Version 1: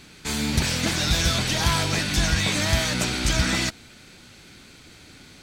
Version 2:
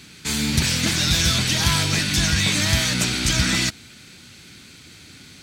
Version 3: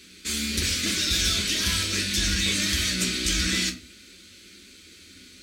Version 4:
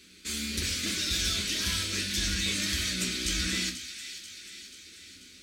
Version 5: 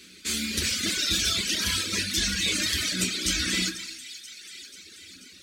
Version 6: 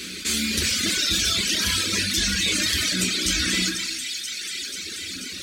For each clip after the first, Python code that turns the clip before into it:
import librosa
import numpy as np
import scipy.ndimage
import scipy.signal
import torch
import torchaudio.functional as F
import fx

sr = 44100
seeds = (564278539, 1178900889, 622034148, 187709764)

y1 = scipy.signal.sosfilt(scipy.signal.butter(2, 78.0, 'highpass', fs=sr, output='sos'), x)
y1 = fx.peak_eq(y1, sr, hz=660.0, db=-8.5, octaves=2.1)
y1 = y1 * librosa.db_to_amplitude(5.0)
y2 = fx.fixed_phaser(y1, sr, hz=340.0, stages=4)
y2 = fx.room_shoebox(y2, sr, seeds[0], volume_m3=160.0, walls='furnished', distance_m=1.0)
y2 = y2 * librosa.db_to_amplitude(-4.0)
y3 = fx.echo_wet_highpass(y2, sr, ms=487, feedback_pct=58, hz=1900.0, wet_db=-10.5)
y3 = y3 * librosa.db_to_amplitude(-5.5)
y4 = fx.rev_gated(y3, sr, seeds[1], gate_ms=290, shape='rising', drr_db=6.0)
y4 = fx.dereverb_blind(y4, sr, rt60_s=1.8)
y4 = fx.highpass(y4, sr, hz=100.0, slope=6)
y4 = y4 * librosa.db_to_amplitude(6.0)
y5 = fx.env_flatten(y4, sr, amount_pct=50)
y5 = y5 * librosa.db_to_amplitude(2.0)